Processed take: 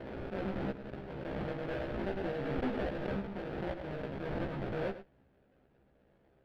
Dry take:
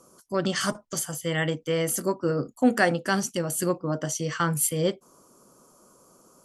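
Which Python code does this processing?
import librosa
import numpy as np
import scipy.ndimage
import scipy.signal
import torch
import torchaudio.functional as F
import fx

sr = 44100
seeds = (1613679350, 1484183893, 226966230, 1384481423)

y = fx.highpass(x, sr, hz=310.0, slope=6)
y = fx.high_shelf(y, sr, hz=8000.0, db=-11.0)
y = fx.sample_hold(y, sr, seeds[0], rate_hz=1100.0, jitter_pct=20)
y = fx.tube_stage(y, sr, drive_db=26.0, bias=0.75)
y = fx.air_absorb(y, sr, metres=390.0)
y = fx.doubler(y, sr, ms=15.0, db=-2.5)
y = y + 10.0 ** (-13.0 / 20.0) * np.pad(y, (int(103 * sr / 1000.0), 0))[:len(y)]
y = fx.pre_swell(y, sr, db_per_s=24.0)
y = y * 10.0 ** (-5.5 / 20.0)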